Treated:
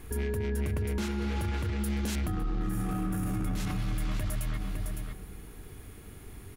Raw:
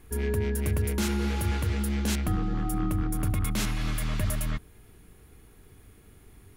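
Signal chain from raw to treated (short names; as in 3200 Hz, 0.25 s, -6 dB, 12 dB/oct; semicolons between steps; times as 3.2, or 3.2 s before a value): 0.48–1.84 high shelf 7000 Hz -10.5 dB; 2.4–3.26 reverb throw, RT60 2.7 s, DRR -11.5 dB; echo 0.558 s -17.5 dB; limiter -31 dBFS, peak gain reduction 24.5 dB; gain +6.5 dB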